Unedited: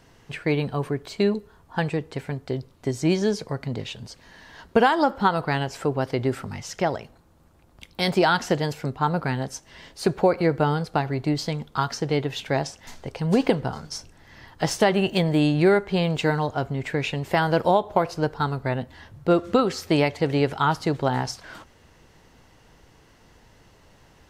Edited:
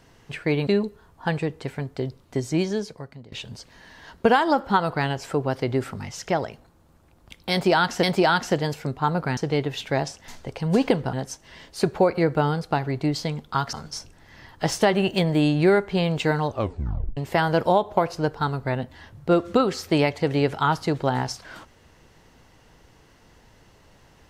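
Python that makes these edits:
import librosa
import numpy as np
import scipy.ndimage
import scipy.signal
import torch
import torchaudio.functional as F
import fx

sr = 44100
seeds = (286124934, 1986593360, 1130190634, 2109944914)

y = fx.edit(x, sr, fx.cut(start_s=0.67, length_s=0.51),
    fx.fade_out_to(start_s=2.9, length_s=0.93, floor_db=-21.0),
    fx.repeat(start_s=8.02, length_s=0.52, count=2),
    fx.move(start_s=11.96, length_s=1.76, to_s=9.36),
    fx.tape_stop(start_s=16.46, length_s=0.7), tone=tone)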